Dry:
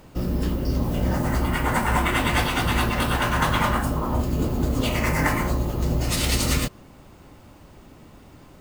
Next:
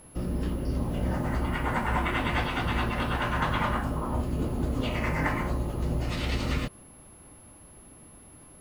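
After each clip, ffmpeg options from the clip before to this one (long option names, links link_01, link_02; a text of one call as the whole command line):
ffmpeg -i in.wav -filter_complex "[0:a]aeval=exprs='val(0)+0.00794*sin(2*PI*11000*n/s)':channel_layout=same,acrossover=split=3900[link_01][link_02];[link_02]acompressor=threshold=-48dB:ratio=4:attack=1:release=60[link_03];[link_01][link_03]amix=inputs=2:normalize=0,volume=-5.5dB" out.wav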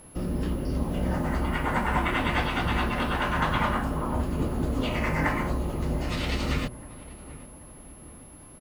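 ffmpeg -i in.wav -filter_complex "[0:a]bandreject=frequency=60:width_type=h:width=6,bandreject=frequency=120:width_type=h:width=6,asplit=2[link_01][link_02];[link_02]adelay=785,lowpass=frequency=1400:poles=1,volume=-16.5dB,asplit=2[link_03][link_04];[link_04]adelay=785,lowpass=frequency=1400:poles=1,volume=0.53,asplit=2[link_05][link_06];[link_06]adelay=785,lowpass=frequency=1400:poles=1,volume=0.53,asplit=2[link_07][link_08];[link_08]adelay=785,lowpass=frequency=1400:poles=1,volume=0.53,asplit=2[link_09][link_10];[link_10]adelay=785,lowpass=frequency=1400:poles=1,volume=0.53[link_11];[link_01][link_03][link_05][link_07][link_09][link_11]amix=inputs=6:normalize=0,volume=2dB" out.wav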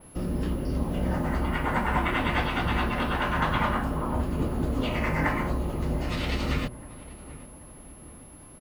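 ffmpeg -i in.wav -af "adynamicequalizer=threshold=0.002:dfrequency=7400:dqfactor=0.9:tfrequency=7400:tqfactor=0.9:attack=5:release=100:ratio=0.375:range=2:mode=cutabove:tftype=bell" out.wav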